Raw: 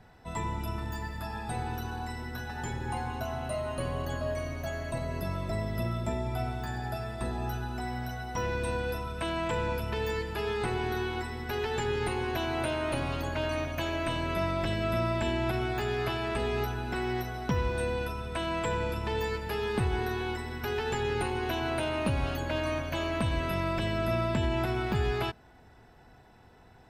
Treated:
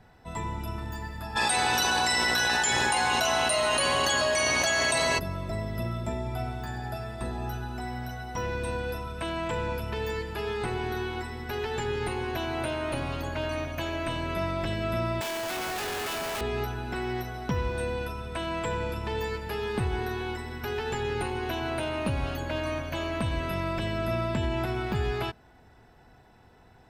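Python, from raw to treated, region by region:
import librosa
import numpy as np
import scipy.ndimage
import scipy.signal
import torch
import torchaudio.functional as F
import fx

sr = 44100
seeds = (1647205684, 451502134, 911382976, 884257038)

y = fx.weighting(x, sr, curve='ITU-R 468', at=(1.35, 5.18), fade=0.02)
y = fx.dmg_buzz(y, sr, base_hz=60.0, harmonics=18, level_db=-50.0, tilt_db=0, odd_only=False, at=(1.35, 5.18), fade=0.02)
y = fx.env_flatten(y, sr, amount_pct=100, at=(1.35, 5.18), fade=0.02)
y = fx.chain(y, sr, fx.highpass(hz=470.0, slope=12),
    fx.high_shelf(hz=2200.0, db=8.0),
    fx.schmitt(flips_db=-41.0), at=(15.21, 16.41))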